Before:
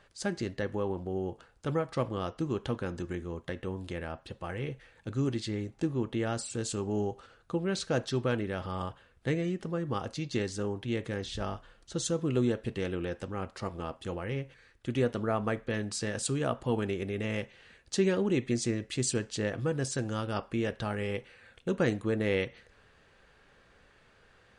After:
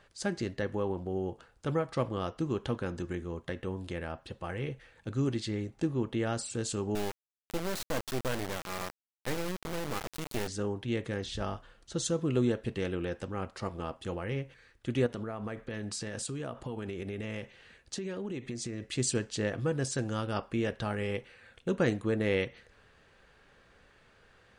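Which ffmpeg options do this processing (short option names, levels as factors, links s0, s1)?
-filter_complex "[0:a]asettb=1/sr,asplit=3[s0][s1][s2];[s0]atrim=end=6.954[s3];[s1]atrim=start=6.95:end=10.48,asetpts=PTS-STARTPTS,afade=t=in:d=0.004:c=qsin,afade=t=out:st=3.526:d=0.004:c=qsin,acrusher=bits=3:dc=4:mix=0:aa=0.000001[s4];[s2]atrim=start=10.476[s5];[s3][s4]acrossfade=d=0.004:c1=hsin:c2=qsin[s6];[s6][s5]acrossfade=d=0.004:c1=qsin:c2=hsin,asettb=1/sr,asplit=3[s7][s8][s9];[s7]atrim=end=15.064[s10];[s8]atrim=start=15.06:end=18.91,asetpts=PTS-STARTPTS,afade=t=in:d=0.004:c=qsin,afade=t=out:st=3.846:d=0.004:c=qsin,acompressor=threshold=0.0224:ratio=12:attack=3.2:release=140:knee=1:detection=peak[s11];[s9]atrim=start=18.906[s12];[s10][s11]acrossfade=d=0.004:c1=hsin:c2=qsin[s13];[s13][s12]acrossfade=d=0.004:c1=qsin:c2=hsin"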